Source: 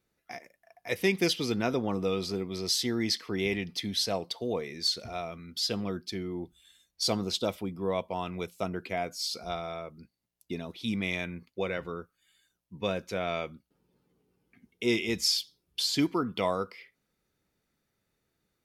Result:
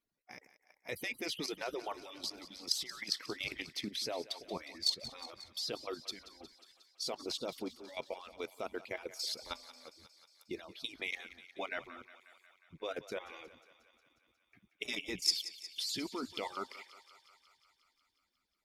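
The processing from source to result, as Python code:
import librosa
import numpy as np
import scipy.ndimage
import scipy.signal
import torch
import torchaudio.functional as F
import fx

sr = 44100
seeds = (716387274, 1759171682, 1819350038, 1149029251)

y = fx.hpss_only(x, sr, part='percussive')
y = fx.level_steps(y, sr, step_db=13)
y = fx.echo_thinned(y, sr, ms=180, feedback_pct=72, hz=490.0, wet_db=-15)
y = F.gain(torch.from_numpy(y), 1.0).numpy()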